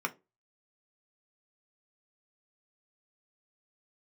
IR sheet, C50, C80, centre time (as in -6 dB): 21.5 dB, 29.5 dB, 5 ms